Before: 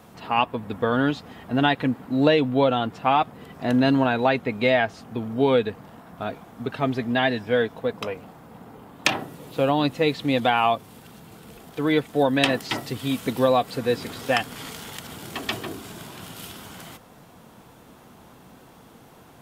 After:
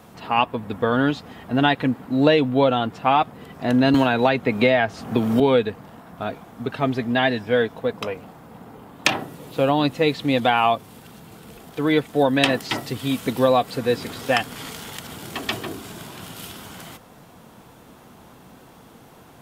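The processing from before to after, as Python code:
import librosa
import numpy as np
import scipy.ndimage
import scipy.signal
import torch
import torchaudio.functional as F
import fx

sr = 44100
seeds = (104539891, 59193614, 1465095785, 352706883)

y = fx.band_squash(x, sr, depth_pct=100, at=(3.94, 5.4))
y = F.gain(torch.from_numpy(y), 2.0).numpy()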